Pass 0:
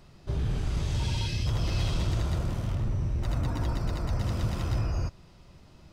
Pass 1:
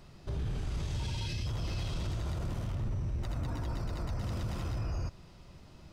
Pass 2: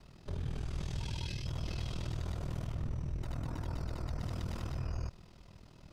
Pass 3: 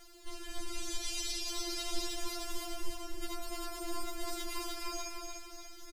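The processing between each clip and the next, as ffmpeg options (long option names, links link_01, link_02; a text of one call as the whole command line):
ffmpeg -i in.wav -af "alimiter=level_in=4.5dB:limit=-24dB:level=0:latency=1:release=46,volume=-4.5dB" out.wav
ffmpeg -i in.wav -af "aeval=exprs='val(0)*sin(2*PI*20*n/s)':channel_layout=same" out.wav
ffmpeg -i in.wav -af "crystalizer=i=3.5:c=0,aecho=1:1:295|590|885|1180|1475|1770:0.631|0.297|0.139|0.0655|0.0308|0.0145,afftfilt=real='re*4*eq(mod(b,16),0)':imag='im*4*eq(mod(b,16),0)':win_size=2048:overlap=0.75,volume=4dB" out.wav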